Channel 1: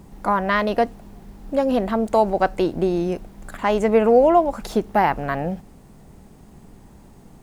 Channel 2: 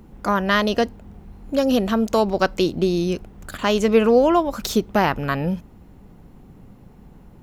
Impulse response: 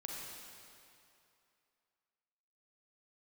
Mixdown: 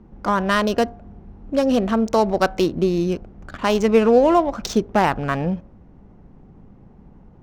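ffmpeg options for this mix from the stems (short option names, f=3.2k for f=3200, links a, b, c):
-filter_complex "[0:a]bandreject=f=50.52:t=h:w=4,bandreject=f=101.04:t=h:w=4,bandreject=f=151.56:t=h:w=4,bandreject=f=202.08:t=h:w=4,bandreject=f=252.6:t=h:w=4,bandreject=f=303.12:t=h:w=4,bandreject=f=353.64:t=h:w=4,bandreject=f=404.16:t=h:w=4,bandreject=f=454.68:t=h:w=4,bandreject=f=505.2:t=h:w=4,bandreject=f=555.72:t=h:w=4,bandreject=f=606.24:t=h:w=4,bandreject=f=656.76:t=h:w=4,bandreject=f=707.28:t=h:w=4,bandreject=f=757.8:t=h:w=4,bandreject=f=808.32:t=h:w=4,bandreject=f=858.84:t=h:w=4,bandreject=f=909.36:t=h:w=4,bandreject=f=959.88:t=h:w=4,bandreject=f=1.0104k:t=h:w=4,bandreject=f=1.06092k:t=h:w=4,bandreject=f=1.11144k:t=h:w=4,bandreject=f=1.16196k:t=h:w=4,bandreject=f=1.21248k:t=h:w=4,bandreject=f=1.263k:t=h:w=4,bandreject=f=1.31352k:t=h:w=4,bandreject=f=1.36404k:t=h:w=4,bandreject=f=1.41456k:t=h:w=4,bandreject=f=1.46508k:t=h:w=4,bandreject=f=1.5156k:t=h:w=4,bandreject=f=1.56612k:t=h:w=4,bandreject=f=1.61664k:t=h:w=4,bandreject=f=1.66716k:t=h:w=4,bandreject=f=1.71768k:t=h:w=4,bandreject=f=1.7682k:t=h:w=4,volume=-8.5dB[a];[1:a]volume=-1.5dB[b];[a][b]amix=inputs=2:normalize=0,equalizer=f=5.8k:w=3.8:g=7,adynamicsmooth=sensitivity=3.5:basefreq=2k"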